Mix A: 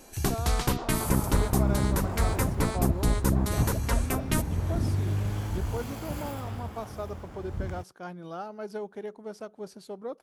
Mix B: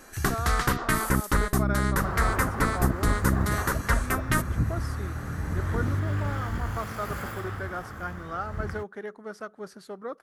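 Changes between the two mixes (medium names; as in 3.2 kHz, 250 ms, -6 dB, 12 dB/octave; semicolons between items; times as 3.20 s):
second sound: entry +1.00 s; master: add high-order bell 1.5 kHz +10.5 dB 1 oct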